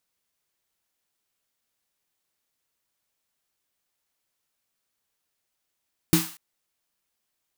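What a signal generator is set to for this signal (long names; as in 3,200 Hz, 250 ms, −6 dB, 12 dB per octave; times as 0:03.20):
synth snare length 0.24 s, tones 170 Hz, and 320 Hz, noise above 770 Hz, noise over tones −5.5 dB, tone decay 0.24 s, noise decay 0.47 s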